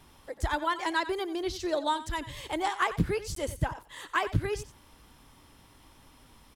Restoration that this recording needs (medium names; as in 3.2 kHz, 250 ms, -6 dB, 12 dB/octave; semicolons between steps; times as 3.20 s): interpolate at 3.35 s, 13 ms; inverse comb 91 ms -14.5 dB